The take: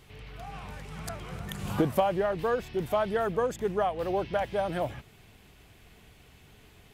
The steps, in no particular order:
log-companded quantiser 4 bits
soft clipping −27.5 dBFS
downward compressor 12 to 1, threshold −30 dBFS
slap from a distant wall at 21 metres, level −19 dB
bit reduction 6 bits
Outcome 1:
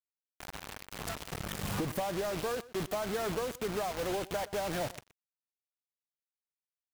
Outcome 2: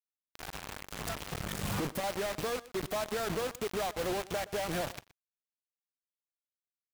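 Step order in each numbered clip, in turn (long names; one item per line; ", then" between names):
soft clipping, then log-companded quantiser, then bit reduction, then downward compressor, then slap from a distant wall
log-companded quantiser, then downward compressor, then soft clipping, then bit reduction, then slap from a distant wall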